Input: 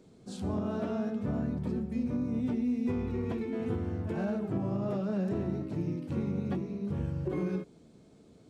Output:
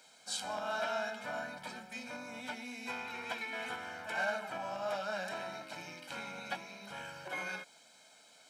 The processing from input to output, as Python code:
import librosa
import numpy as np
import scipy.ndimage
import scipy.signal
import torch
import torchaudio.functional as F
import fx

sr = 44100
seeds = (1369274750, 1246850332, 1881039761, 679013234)

y = scipy.signal.sosfilt(scipy.signal.butter(2, 1300.0, 'highpass', fs=sr, output='sos'), x)
y = y + 0.76 * np.pad(y, (int(1.3 * sr / 1000.0), 0))[:len(y)]
y = y * 10.0 ** (10.5 / 20.0)